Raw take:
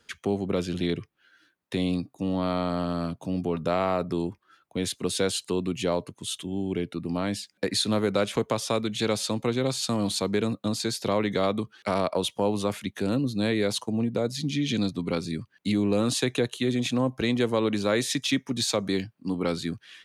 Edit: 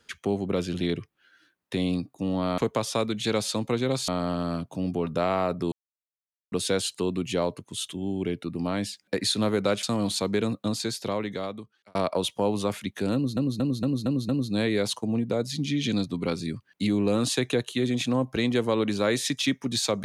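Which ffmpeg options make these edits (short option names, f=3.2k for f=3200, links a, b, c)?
-filter_complex "[0:a]asplit=12[a][b][c][d][e][f][g][h][i][j][k][l];[a]atrim=end=2.582[m];[b]atrim=start=8.328:end=9.832[n];[c]atrim=start=2.578:end=4.22,asetpts=PTS-STARTPTS,afade=t=out:st=1.638:d=0.004:c=hsin[o];[d]atrim=start=4.22:end=5.02,asetpts=PTS-STARTPTS,volume=0[p];[e]atrim=start=5.02:end=8.332,asetpts=PTS-STARTPTS,afade=t=in:d=0.004:c=hsin[q];[f]atrim=start=9.828:end=11.95,asetpts=PTS-STARTPTS,afade=t=out:st=0.872:d=1.25[r];[g]atrim=start=11.95:end=13.372,asetpts=PTS-STARTPTS,afade=t=in:d=0.004:c=hsin[s];[h]atrim=start=13.138:end=13.372[t];[i]atrim=start=13.138:end=13.372[u];[j]atrim=start=13.138:end=13.372[v];[k]atrim=start=13.138:end=13.372[w];[l]atrim=start=13.138[x];[m][n]acrossfade=d=0.004:c1=hsin:c2=hsin[y];[o][p][q]concat=n=3:v=0:a=1[z];[y][z]acrossfade=d=0.004:c1=hsin:c2=hsin[aa];[r][s]concat=n=2:v=0:a=1[ab];[aa][ab]acrossfade=d=0.004:c1=hsin:c2=hsin[ac];[ac][t]acrossfade=d=0.004:c1=hsin:c2=hsin[ad];[ad][u]acrossfade=d=0.004:c1=hsin:c2=hsin[ae];[ae][v]acrossfade=d=0.004:c1=hsin:c2=hsin[af];[af][w]acrossfade=d=0.004:c1=hsin:c2=hsin[ag];[ag][x]acrossfade=d=0.004:c1=hsin:c2=hsin"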